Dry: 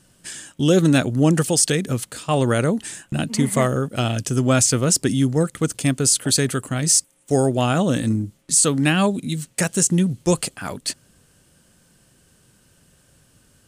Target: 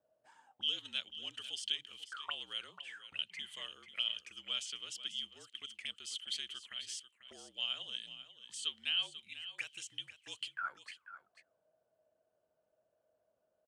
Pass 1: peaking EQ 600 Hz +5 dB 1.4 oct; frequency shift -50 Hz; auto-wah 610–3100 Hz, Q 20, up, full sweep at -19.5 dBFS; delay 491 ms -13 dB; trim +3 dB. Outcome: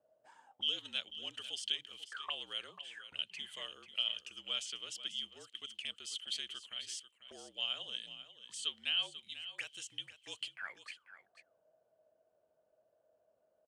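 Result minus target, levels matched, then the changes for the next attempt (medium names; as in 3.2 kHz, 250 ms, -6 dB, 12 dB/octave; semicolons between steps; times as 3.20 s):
500 Hz band +4.0 dB
remove: peaking EQ 600 Hz +5 dB 1.4 oct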